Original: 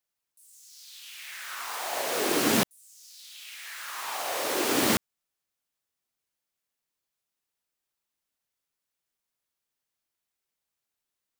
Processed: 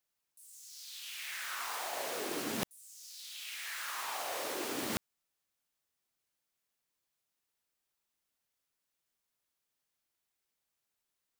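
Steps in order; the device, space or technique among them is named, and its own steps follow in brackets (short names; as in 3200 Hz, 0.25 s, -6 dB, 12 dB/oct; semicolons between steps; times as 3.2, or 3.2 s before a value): compression on the reversed sound (reverse; compressor 6:1, threshold -35 dBFS, peak gain reduction 14.5 dB; reverse)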